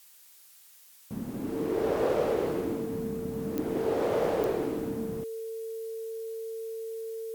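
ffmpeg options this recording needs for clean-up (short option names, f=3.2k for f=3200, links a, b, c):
-af "adeclick=t=4,bandreject=f=450:w=30,afftdn=nr=21:nf=-55"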